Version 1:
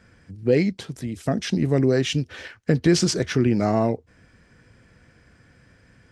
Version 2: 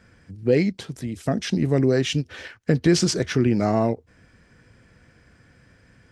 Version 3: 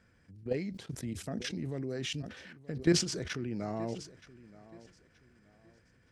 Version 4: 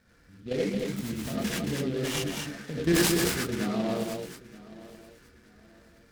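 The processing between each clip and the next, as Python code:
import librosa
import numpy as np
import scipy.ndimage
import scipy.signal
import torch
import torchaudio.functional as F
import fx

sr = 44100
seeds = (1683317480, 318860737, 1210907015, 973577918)

y1 = fx.end_taper(x, sr, db_per_s=590.0)
y2 = fx.level_steps(y1, sr, step_db=15)
y2 = fx.echo_feedback(y2, sr, ms=925, feedback_pct=30, wet_db=-19)
y2 = fx.sustainer(y2, sr, db_per_s=100.0)
y2 = F.gain(torch.from_numpy(y2), -6.5).numpy()
y3 = y2 + 10.0 ** (-4.5 / 20.0) * np.pad(y2, (int(223 * sr / 1000.0), 0))[:len(y2)]
y3 = fx.rev_gated(y3, sr, seeds[0], gate_ms=120, shape='rising', drr_db=-6.0)
y3 = fx.noise_mod_delay(y3, sr, seeds[1], noise_hz=2800.0, depth_ms=0.048)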